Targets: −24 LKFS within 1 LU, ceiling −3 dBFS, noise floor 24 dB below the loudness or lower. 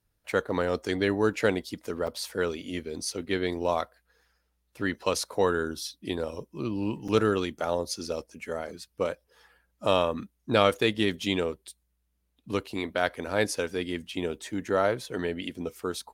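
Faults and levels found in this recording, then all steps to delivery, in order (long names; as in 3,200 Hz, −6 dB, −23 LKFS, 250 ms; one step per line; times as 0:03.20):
number of dropouts 2; longest dropout 4.7 ms; integrated loudness −29.5 LKFS; sample peak −7.0 dBFS; target loudness −24.0 LKFS
→ repair the gap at 0:02.07/0:07.08, 4.7 ms
level +5.5 dB
brickwall limiter −3 dBFS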